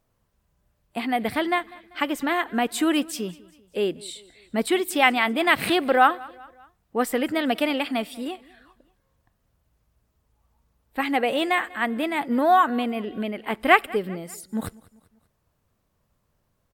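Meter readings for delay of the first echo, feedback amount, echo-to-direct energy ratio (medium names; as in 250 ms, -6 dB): 195 ms, 49%, -21.5 dB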